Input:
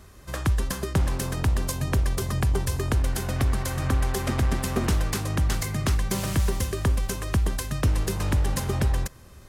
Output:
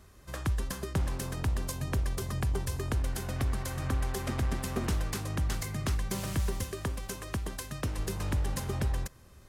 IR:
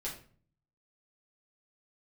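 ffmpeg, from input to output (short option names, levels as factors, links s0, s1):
-filter_complex "[0:a]asettb=1/sr,asplit=3[s0][s1][s2];[s0]atrim=end=6.634[s3];[s1]atrim=start=6.63:end=7.99,asetpts=PTS-STARTPTS,afade=t=in:d=0.004:c=qsin,afade=t=out:st=1.356:d=0.004:c=qsin,lowshelf=f=110:g=-8[s4];[s2]atrim=start=7.986[s5];[s3][s4]acrossfade=d=0.004:c1=hsin:c2=qsin[s6];[s6][s5]acrossfade=d=0.004:c1=qsin:c2=hsin,volume=0.447"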